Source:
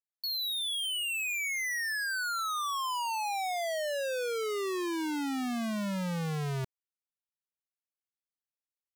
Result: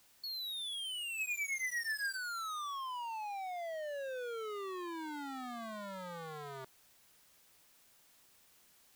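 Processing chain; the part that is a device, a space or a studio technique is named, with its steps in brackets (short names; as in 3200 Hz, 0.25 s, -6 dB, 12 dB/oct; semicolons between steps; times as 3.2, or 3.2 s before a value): drive-through speaker (BPF 480–3600 Hz; bell 1200 Hz +4 dB 0.77 oct; hard clip -40 dBFS, distortion -6 dB; white noise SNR 23 dB); 1.17–2.17 comb 7.4 ms, depth 97%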